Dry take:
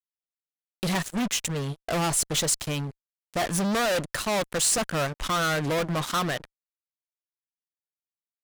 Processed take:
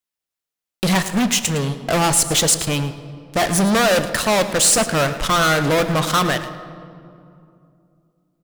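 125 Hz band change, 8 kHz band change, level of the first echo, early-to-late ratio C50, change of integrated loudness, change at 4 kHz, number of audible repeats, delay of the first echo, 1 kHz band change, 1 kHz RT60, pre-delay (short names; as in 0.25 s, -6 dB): +8.5 dB, +8.5 dB, -14.5 dB, 10.5 dB, +9.0 dB, +9.0 dB, 1, 0.11 s, +9.0 dB, 2.4 s, 9 ms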